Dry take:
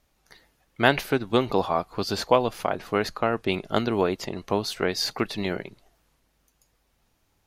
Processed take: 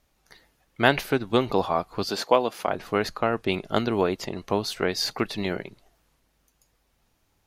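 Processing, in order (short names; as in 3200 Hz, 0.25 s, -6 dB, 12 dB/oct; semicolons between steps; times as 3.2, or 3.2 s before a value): 2.09–2.68 HPF 220 Hz 12 dB/oct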